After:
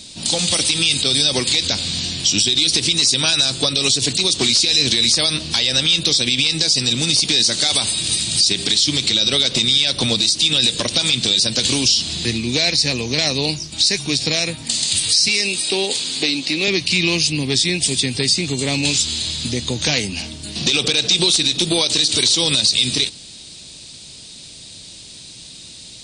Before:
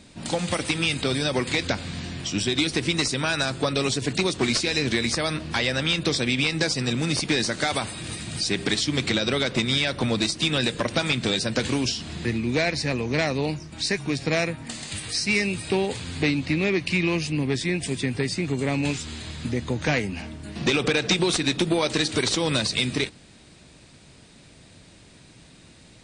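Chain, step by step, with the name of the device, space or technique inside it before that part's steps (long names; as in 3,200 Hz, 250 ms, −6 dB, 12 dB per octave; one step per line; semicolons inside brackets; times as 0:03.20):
over-bright horn tweeter (high shelf with overshoot 2,600 Hz +13.5 dB, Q 1.5; brickwall limiter −8.5 dBFS, peak gain reduction 11 dB)
0:15.28–0:16.68: Chebyshev high-pass filter 300 Hz, order 2
level +3 dB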